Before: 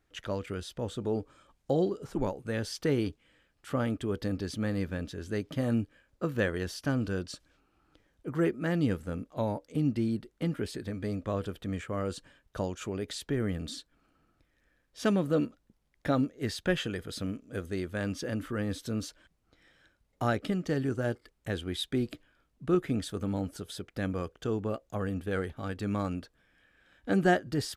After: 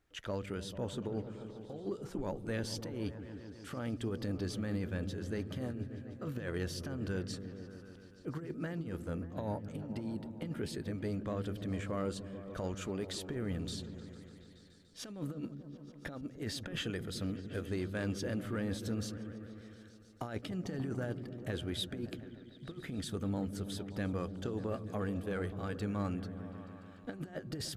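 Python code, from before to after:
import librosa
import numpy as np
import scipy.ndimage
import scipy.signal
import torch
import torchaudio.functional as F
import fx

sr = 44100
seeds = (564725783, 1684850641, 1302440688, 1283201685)

y = fx.over_compress(x, sr, threshold_db=-31.0, ratio=-0.5)
y = fx.echo_opening(y, sr, ms=146, hz=200, octaves=1, feedback_pct=70, wet_db=-6)
y = 10.0 ** (-19.5 / 20.0) * np.tanh(y / 10.0 ** (-19.5 / 20.0))
y = fx.band_widen(y, sr, depth_pct=70, at=(22.1, 22.72))
y = F.gain(torch.from_numpy(y), -5.0).numpy()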